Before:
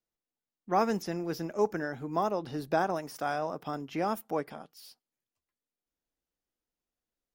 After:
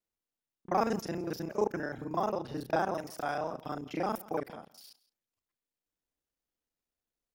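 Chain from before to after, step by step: local time reversal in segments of 31 ms; echo 0.167 s -20.5 dB; gain -1.5 dB

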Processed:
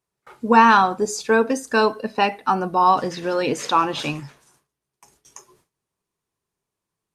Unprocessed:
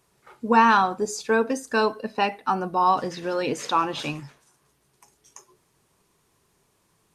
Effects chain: gate with hold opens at -50 dBFS; gain +4 dB

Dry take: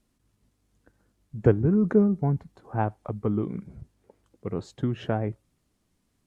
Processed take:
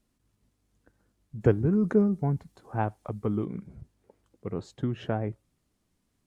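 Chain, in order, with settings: 1.41–3.45 high shelf 3300 Hz +9 dB; gain -2.5 dB

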